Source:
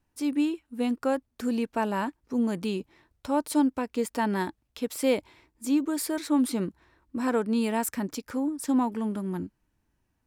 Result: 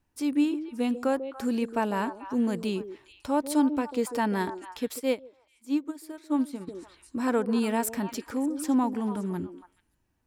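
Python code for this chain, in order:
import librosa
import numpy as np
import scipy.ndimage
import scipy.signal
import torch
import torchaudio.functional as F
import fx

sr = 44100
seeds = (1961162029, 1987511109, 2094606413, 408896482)

y = fx.echo_stepped(x, sr, ms=143, hz=400.0, octaves=1.4, feedback_pct=70, wet_db=-7)
y = fx.upward_expand(y, sr, threshold_db=-31.0, expansion=2.5, at=(4.98, 6.67), fade=0.02)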